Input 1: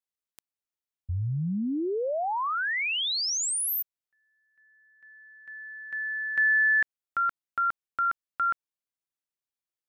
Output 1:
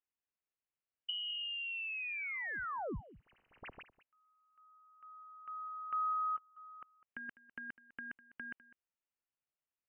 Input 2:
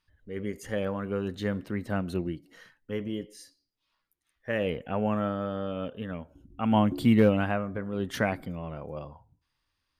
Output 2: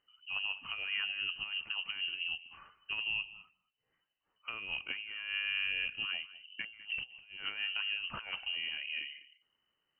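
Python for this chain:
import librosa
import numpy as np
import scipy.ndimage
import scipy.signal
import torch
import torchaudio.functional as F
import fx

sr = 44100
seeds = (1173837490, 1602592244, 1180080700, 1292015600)

p1 = fx.self_delay(x, sr, depth_ms=0.087)
p2 = fx.over_compress(p1, sr, threshold_db=-32.0, ratio=-0.5)
p3 = p2 + fx.echo_single(p2, sr, ms=202, db=-18.0, dry=0)
p4 = fx.freq_invert(p3, sr, carrier_hz=3000)
y = p4 * 10.0 ** (-6.0 / 20.0)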